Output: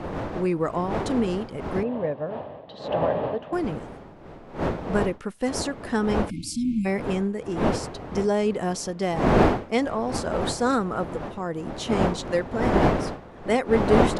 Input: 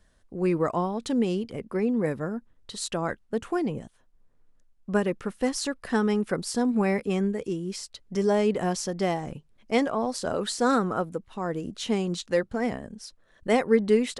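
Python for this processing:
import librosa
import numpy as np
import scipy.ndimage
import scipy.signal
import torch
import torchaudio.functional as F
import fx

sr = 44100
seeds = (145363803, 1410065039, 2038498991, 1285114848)

y = fx.dmg_wind(x, sr, seeds[0], corner_hz=610.0, level_db=-28.0)
y = fx.cabinet(y, sr, low_hz=140.0, low_slope=12, high_hz=3300.0, hz=(210.0, 350.0, 600.0, 1400.0, 2200.0), db=(-8, -9, 8, -10, -8), at=(1.83, 3.53))
y = fx.spec_erase(y, sr, start_s=6.3, length_s=0.55, low_hz=330.0, high_hz=2100.0)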